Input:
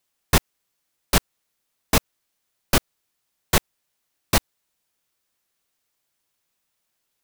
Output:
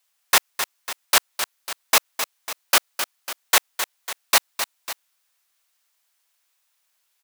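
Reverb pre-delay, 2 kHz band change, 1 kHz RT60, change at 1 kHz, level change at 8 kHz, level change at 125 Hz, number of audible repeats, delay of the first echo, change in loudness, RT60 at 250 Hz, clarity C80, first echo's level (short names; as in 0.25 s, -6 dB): none, +5.5 dB, none, +3.5 dB, +5.5 dB, under -25 dB, 2, 0.26 s, +1.5 dB, none, none, -9.5 dB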